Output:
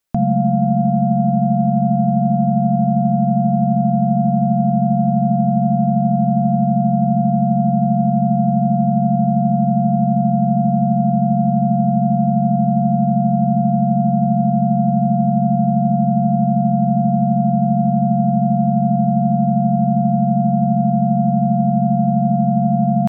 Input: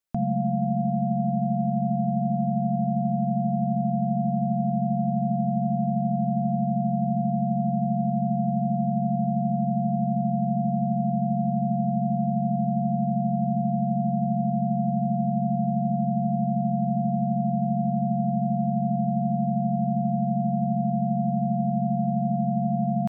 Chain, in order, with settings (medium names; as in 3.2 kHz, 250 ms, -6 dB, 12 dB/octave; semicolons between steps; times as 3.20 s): tracing distortion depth 0.034 ms; trim +9 dB